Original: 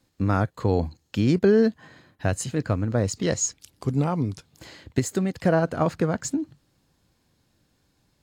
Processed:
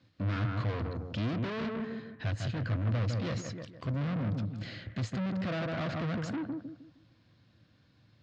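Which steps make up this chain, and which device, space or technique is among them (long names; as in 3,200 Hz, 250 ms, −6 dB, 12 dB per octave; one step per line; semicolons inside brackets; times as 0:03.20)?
0:04.06–0:05.26: thirty-one-band graphic EQ 200 Hz +8 dB, 315 Hz −3 dB, 1,000 Hz −10 dB
analogue delay pedal into a guitar amplifier (bucket-brigade delay 155 ms, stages 2,048, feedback 31%, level −9 dB; tube saturation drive 34 dB, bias 0.25; loudspeaker in its box 84–4,500 Hz, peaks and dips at 110 Hz +9 dB, 410 Hz −8 dB, 850 Hz −8 dB)
level +3 dB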